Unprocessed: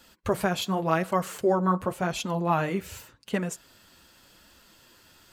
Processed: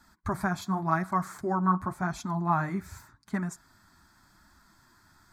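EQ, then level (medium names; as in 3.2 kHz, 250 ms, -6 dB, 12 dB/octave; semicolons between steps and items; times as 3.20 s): treble shelf 6 kHz -9.5 dB; treble shelf 12 kHz -4 dB; static phaser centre 1.2 kHz, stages 4; +1.0 dB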